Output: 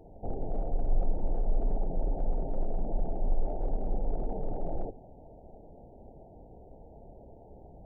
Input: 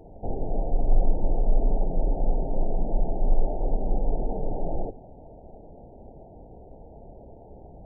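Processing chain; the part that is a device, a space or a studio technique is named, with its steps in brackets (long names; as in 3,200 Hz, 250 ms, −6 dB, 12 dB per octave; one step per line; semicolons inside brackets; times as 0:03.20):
parallel distortion (in parallel at −5.5 dB: hard clipping −21.5 dBFS, distortion −8 dB)
on the sum: level −8.5 dB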